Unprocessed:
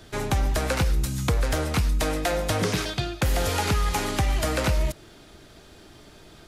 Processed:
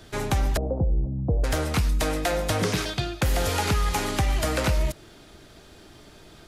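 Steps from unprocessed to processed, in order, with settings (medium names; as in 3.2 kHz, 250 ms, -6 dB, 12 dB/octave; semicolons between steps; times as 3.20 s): 0.57–1.44 s: steep low-pass 710 Hz 36 dB/octave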